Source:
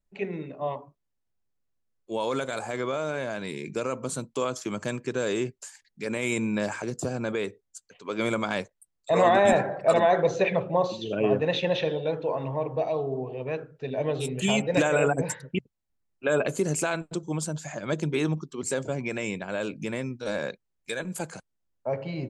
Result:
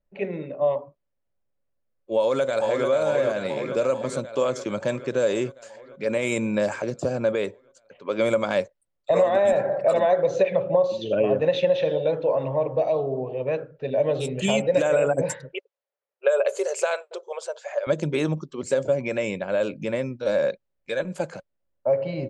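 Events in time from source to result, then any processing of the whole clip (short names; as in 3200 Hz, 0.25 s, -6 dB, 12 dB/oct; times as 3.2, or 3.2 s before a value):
2.17–2.87 echo throw 0.44 s, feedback 70%, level -4.5 dB
15.53–17.87 brick-wall FIR high-pass 370 Hz
whole clip: low-pass opened by the level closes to 2500 Hz, open at -21 dBFS; bell 560 Hz +13 dB 0.27 oct; compressor 6:1, threshold -18 dBFS; gain +1.5 dB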